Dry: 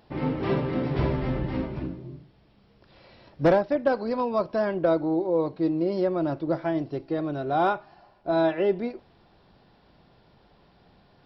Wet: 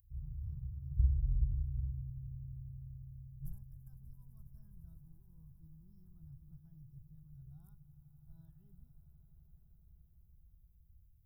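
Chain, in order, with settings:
inverse Chebyshev band-stop filter 260–4,800 Hz, stop band 60 dB
high-shelf EQ 4,200 Hz +10 dB
echo that builds up and dies away 84 ms, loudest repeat 8, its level −18 dB
level +4 dB

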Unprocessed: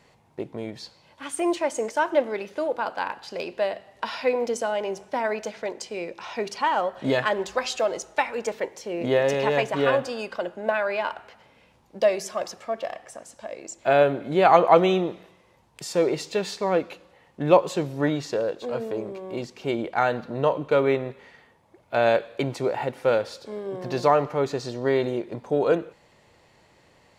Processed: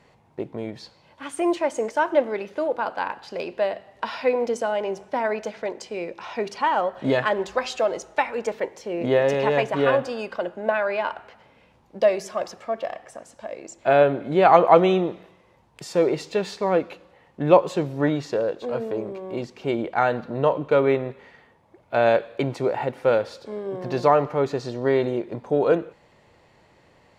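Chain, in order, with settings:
high-shelf EQ 3,800 Hz −8 dB
level +2 dB

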